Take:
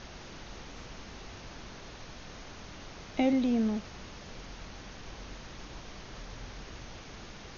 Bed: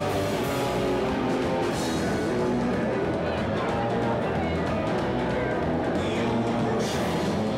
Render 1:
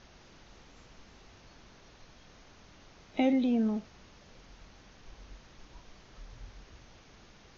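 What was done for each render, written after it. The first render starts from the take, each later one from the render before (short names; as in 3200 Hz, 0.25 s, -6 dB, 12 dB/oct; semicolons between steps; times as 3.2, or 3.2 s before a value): noise print and reduce 10 dB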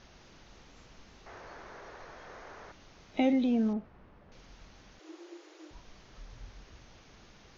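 1.26–2.72 band shelf 850 Hz +12.5 dB 2.8 oct; 3.73–4.32 LPF 1500 Hz; 4.99–5.71 frequency shift +300 Hz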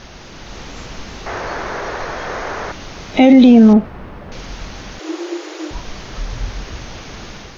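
AGC gain up to 5 dB; maximiser +19 dB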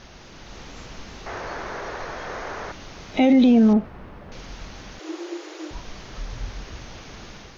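gain -8 dB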